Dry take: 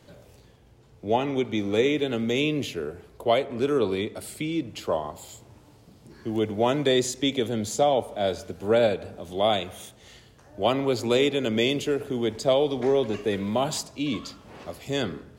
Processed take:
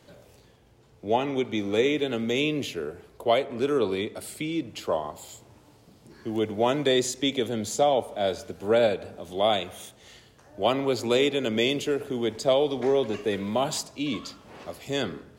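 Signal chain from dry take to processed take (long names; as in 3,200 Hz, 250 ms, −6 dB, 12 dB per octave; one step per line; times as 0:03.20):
low-shelf EQ 170 Hz −5.5 dB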